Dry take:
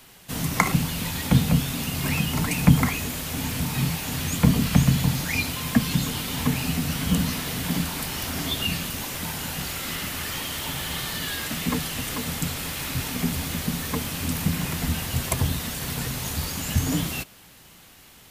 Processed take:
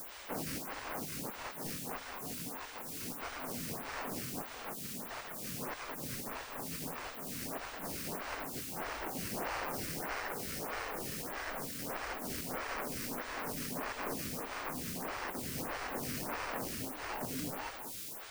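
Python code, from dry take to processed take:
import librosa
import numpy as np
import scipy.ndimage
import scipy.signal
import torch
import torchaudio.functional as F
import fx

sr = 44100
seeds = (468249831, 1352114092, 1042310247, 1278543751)

p1 = scipy.signal.sosfilt(scipy.signal.butter(2, 270.0, 'highpass', fs=sr, output='sos'), x)
p2 = p1 + 10.0 ** (-5.0 / 20.0) * np.pad(p1, (int(468 * sr / 1000.0), 0))[:len(p1)]
p3 = fx.over_compress(p2, sr, threshold_db=-32.0, ratio=-0.5)
p4 = fx.sample_hold(p3, sr, seeds[0], rate_hz=3600.0, jitter_pct=0)
p5 = p4 + fx.echo_single(p4, sr, ms=210, db=-7.0, dry=0)
p6 = fx.quant_dither(p5, sr, seeds[1], bits=6, dither='triangular')
p7 = fx.stagger_phaser(p6, sr, hz=1.6)
y = p7 * 10.0 ** (-7.5 / 20.0)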